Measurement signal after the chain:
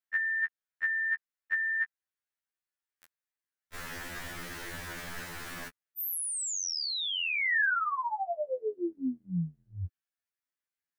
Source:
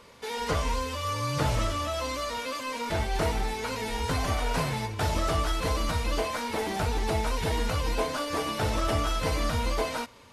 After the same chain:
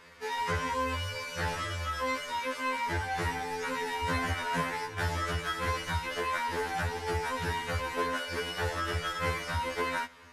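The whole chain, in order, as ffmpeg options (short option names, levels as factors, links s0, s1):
-filter_complex "[0:a]equalizer=f=1700:w=1.8:g=11,asplit=2[s0][s1];[s1]acompressor=threshold=0.0355:ratio=6,volume=0.794[s2];[s0][s2]amix=inputs=2:normalize=0,afftfilt=real='re*2*eq(mod(b,4),0)':imag='im*2*eq(mod(b,4),0)':win_size=2048:overlap=0.75,volume=0.473"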